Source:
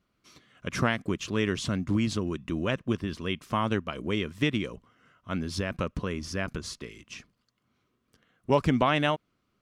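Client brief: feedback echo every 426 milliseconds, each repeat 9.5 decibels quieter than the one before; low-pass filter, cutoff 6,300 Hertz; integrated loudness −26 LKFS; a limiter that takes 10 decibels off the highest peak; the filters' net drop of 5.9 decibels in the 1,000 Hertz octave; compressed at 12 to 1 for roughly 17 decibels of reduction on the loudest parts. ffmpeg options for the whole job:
ffmpeg -i in.wav -af "lowpass=6300,equalizer=frequency=1000:width_type=o:gain=-7.5,acompressor=threshold=-38dB:ratio=12,alimiter=level_in=11.5dB:limit=-24dB:level=0:latency=1,volume=-11.5dB,aecho=1:1:426|852|1278|1704:0.335|0.111|0.0365|0.012,volume=20.5dB" out.wav

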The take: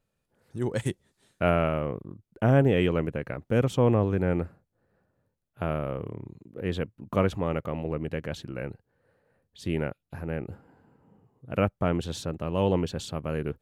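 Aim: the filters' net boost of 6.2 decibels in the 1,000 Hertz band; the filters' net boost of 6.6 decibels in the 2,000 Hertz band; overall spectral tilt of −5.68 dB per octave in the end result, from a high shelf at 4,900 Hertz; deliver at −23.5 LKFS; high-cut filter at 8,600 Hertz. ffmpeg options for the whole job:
ffmpeg -i in.wav -af "lowpass=8600,equalizer=frequency=1000:width_type=o:gain=6.5,equalizer=frequency=2000:width_type=o:gain=6,highshelf=frequency=4900:gain=3,volume=3dB" out.wav

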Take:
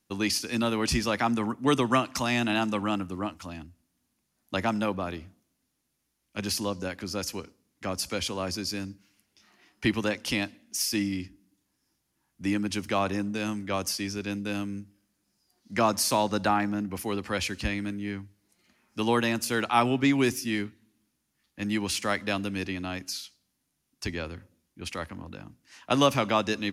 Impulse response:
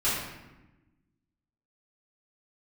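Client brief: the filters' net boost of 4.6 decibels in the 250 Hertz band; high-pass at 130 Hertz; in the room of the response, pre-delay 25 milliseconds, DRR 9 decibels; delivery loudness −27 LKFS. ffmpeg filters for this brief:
-filter_complex "[0:a]highpass=130,equalizer=frequency=250:width_type=o:gain=6,asplit=2[link_01][link_02];[1:a]atrim=start_sample=2205,adelay=25[link_03];[link_02][link_03]afir=irnorm=-1:irlink=0,volume=-20.5dB[link_04];[link_01][link_04]amix=inputs=2:normalize=0,volume=-1dB"

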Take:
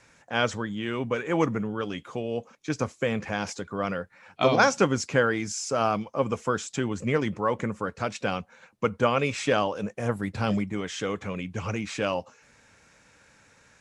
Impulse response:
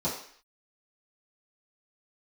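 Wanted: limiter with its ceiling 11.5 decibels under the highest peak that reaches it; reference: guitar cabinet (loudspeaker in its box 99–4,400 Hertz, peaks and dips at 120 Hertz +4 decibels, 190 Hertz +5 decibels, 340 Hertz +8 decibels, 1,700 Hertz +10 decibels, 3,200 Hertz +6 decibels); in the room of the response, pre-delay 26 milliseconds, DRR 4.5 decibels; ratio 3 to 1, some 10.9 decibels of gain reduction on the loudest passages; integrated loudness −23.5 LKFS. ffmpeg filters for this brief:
-filter_complex "[0:a]acompressor=threshold=-31dB:ratio=3,alimiter=level_in=1.5dB:limit=-24dB:level=0:latency=1,volume=-1.5dB,asplit=2[link_01][link_02];[1:a]atrim=start_sample=2205,adelay=26[link_03];[link_02][link_03]afir=irnorm=-1:irlink=0,volume=-12.5dB[link_04];[link_01][link_04]amix=inputs=2:normalize=0,highpass=99,equalizer=frequency=120:width_type=q:width=4:gain=4,equalizer=frequency=190:width_type=q:width=4:gain=5,equalizer=frequency=340:width_type=q:width=4:gain=8,equalizer=frequency=1700:width_type=q:width=4:gain=10,equalizer=frequency=3200:width_type=q:width=4:gain=6,lowpass=frequency=4400:width=0.5412,lowpass=frequency=4400:width=1.3066,volume=8.5dB"

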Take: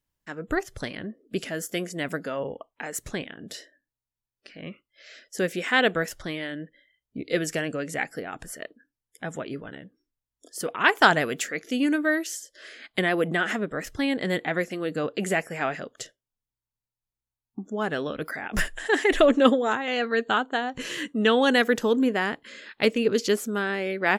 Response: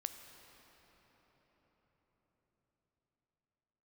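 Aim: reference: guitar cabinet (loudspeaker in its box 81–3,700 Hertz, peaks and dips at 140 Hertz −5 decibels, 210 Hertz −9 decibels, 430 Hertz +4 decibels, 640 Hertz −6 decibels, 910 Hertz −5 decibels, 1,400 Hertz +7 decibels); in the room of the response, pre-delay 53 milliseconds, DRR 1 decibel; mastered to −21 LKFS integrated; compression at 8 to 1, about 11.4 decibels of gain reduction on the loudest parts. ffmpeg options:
-filter_complex "[0:a]acompressor=threshold=-24dB:ratio=8,asplit=2[link_01][link_02];[1:a]atrim=start_sample=2205,adelay=53[link_03];[link_02][link_03]afir=irnorm=-1:irlink=0,volume=0.5dB[link_04];[link_01][link_04]amix=inputs=2:normalize=0,highpass=81,equalizer=frequency=140:width_type=q:width=4:gain=-5,equalizer=frequency=210:width_type=q:width=4:gain=-9,equalizer=frequency=430:width_type=q:width=4:gain=4,equalizer=frequency=640:width_type=q:width=4:gain=-6,equalizer=frequency=910:width_type=q:width=4:gain=-5,equalizer=frequency=1400:width_type=q:width=4:gain=7,lowpass=frequency=3700:width=0.5412,lowpass=frequency=3700:width=1.3066,volume=7dB"

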